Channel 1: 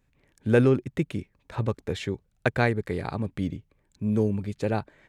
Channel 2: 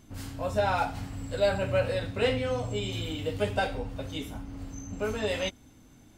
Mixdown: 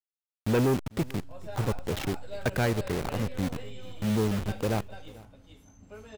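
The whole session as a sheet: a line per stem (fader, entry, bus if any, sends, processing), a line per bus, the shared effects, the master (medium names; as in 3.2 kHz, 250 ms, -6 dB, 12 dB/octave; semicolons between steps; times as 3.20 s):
+1.5 dB, 0.00 s, no send, echo send -22.5 dB, send-on-delta sampling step -28.5 dBFS; saturation -21.5 dBFS, distortion -10 dB
-15.5 dB, 0.90 s, no send, echo send -4.5 dB, none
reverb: none
echo: delay 444 ms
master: none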